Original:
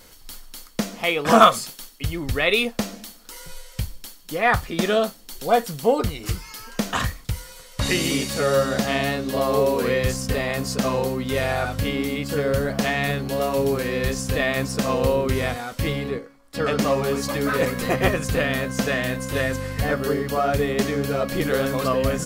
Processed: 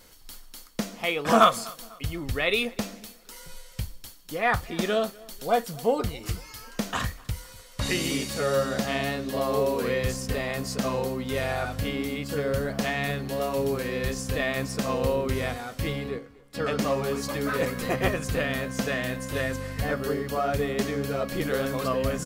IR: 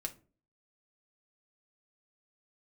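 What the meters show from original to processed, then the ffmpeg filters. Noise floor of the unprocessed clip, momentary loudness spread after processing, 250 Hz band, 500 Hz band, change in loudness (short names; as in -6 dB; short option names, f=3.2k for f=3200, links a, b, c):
-46 dBFS, 12 LU, -5.0 dB, -5.0 dB, -5.0 dB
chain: -filter_complex "[0:a]asplit=2[a][b];[b]adelay=248,lowpass=f=3.6k:p=1,volume=-23dB,asplit=2[c][d];[d]adelay=248,lowpass=f=3.6k:p=1,volume=0.45,asplit=2[e][f];[f]adelay=248,lowpass=f=3.6k:p=1,volume=0.45[g];[a][c][e][g]amix=inputs=4:normalize=0,volume=-5dB"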